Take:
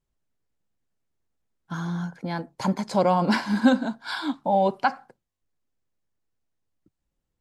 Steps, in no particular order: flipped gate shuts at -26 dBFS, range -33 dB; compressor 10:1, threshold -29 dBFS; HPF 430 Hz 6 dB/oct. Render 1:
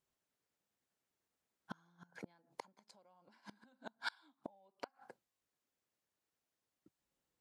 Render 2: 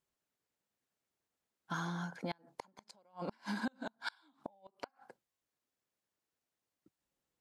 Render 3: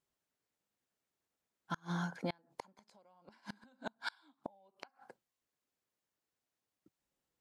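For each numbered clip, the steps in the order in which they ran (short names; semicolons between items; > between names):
compressor > flipped gate > HPF; compressor > HPF > flipped gate; HPF > compressor > flipped gate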